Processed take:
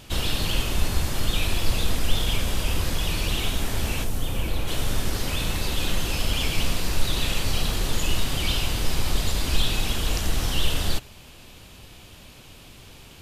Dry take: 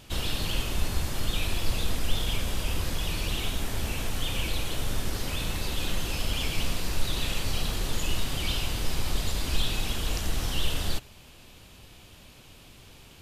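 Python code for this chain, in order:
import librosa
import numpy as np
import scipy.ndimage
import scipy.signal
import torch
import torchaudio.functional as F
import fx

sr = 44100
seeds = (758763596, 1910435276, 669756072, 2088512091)

y = fx.peak_eq(x, sr, hz=fx.line((4.03, 2000.0), (4.67, 7500.0)), db=-9.0, octaves=3.0, at=(4.03, 4.67), fade=0.02)
y = y * librosa.db_to_amplitude(4.5)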